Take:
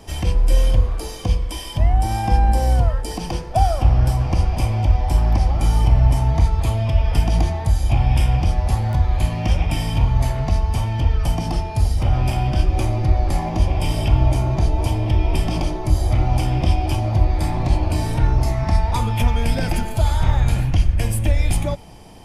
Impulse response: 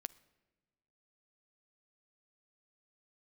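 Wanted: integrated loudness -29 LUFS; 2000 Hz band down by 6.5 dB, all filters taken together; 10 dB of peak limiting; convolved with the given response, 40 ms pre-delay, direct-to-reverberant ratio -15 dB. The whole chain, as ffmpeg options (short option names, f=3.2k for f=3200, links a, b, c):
-filter_complex "[0:a]equalizer=f=2k:t=o:g=-8.5,alimiter=limit=-12.5dB:level=0:latency=1,asplit=2[a][b];[1:a]atrim=start_sample=2205,adelay=40[c];[b][c]afir=irnorm=-1:irlink=0,volume=18.5dB[d];[a][d]amix=inputs=2:normalize=0,volume=-21dB"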